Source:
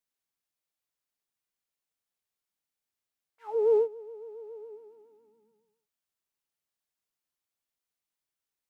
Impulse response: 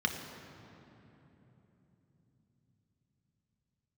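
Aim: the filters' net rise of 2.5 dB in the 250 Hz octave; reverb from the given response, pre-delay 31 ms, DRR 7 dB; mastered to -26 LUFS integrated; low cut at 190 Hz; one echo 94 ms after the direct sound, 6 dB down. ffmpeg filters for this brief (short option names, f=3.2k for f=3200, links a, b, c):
-filter_complex "[0:a]highpass=190,equalizer=f=250:t=o:g=8,aecho=1:1:94:0.501,asplit=2[a][b];[1:a]atrim=start_sample=2205,adelay=31[c];[b][c]afir=irnorm=-1:irlink=0,volume=-14.5dB[d];[a][d]amix=inputs=2:normalize=0"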